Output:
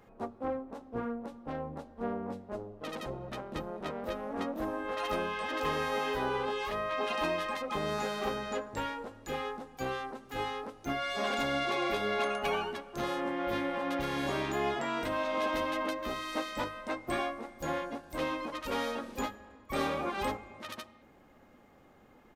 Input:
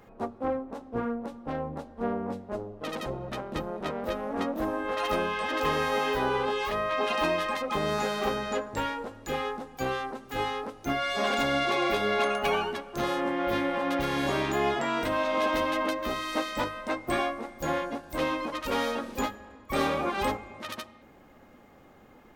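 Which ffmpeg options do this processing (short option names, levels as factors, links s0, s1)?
-af "aresample=32000,aresample=44100,volume=0.562"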